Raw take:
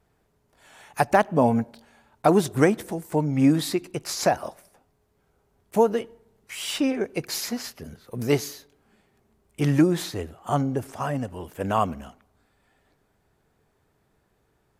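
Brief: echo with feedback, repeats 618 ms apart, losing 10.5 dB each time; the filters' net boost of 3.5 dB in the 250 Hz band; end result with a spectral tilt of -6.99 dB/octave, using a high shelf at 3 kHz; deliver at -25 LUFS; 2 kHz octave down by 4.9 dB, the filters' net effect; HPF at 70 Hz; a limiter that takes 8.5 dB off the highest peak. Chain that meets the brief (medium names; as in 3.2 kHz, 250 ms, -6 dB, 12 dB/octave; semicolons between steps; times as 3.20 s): high-pass 70 Hz; peaking EQ 250 Hz +4.5 dB; peaking EQ 2 kHz -4.5 dB; treble shelf 3 kHz -5.5 dB; peak limiter -12.5 dBFS; feedback delay 618 ms, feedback 30%, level -10.5 dB; trim +1 dB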